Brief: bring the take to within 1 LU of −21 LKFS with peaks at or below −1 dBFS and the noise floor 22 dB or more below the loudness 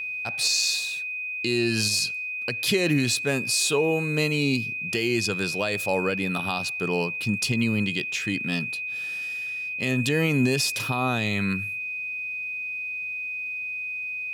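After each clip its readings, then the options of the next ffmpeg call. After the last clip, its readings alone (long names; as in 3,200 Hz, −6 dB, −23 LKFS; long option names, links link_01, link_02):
interfering tone 2,500 Hz; level of the tone −29 dBFS; integrated loudness −25.0 LKFS; sample peak −12.0 dBFS; target loudness −21.0 LKFS
→ -af "bandreject=frequency=2500:width=30"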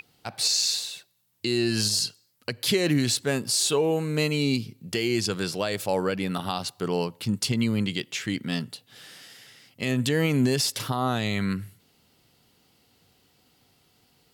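interfering tone none found; integrated loudness −26.0 LKFS; sample peak −12.5 dBFS; target loudness −21.0 LKFS
→ -af "volume=5dB"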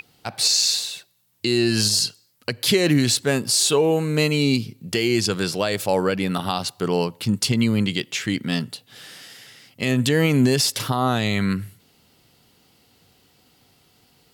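integrated loudness −21.0 LKFS; sample peak −7.5 dBFS; background noise floor −60 dBFS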